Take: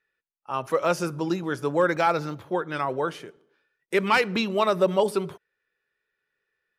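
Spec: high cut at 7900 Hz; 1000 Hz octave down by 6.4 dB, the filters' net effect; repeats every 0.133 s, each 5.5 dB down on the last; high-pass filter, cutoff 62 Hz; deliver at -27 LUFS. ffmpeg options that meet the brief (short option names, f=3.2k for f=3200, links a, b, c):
-af "highpass=62,lowpass=7.9k,equalizer=f=1k:t=o:g=-8.5,aecho=1:1:133|266|399|532|665|798|931:0.531|0.281|0.149|0.079|0.0419|0.0222|0.0118,volume=-0.5dB"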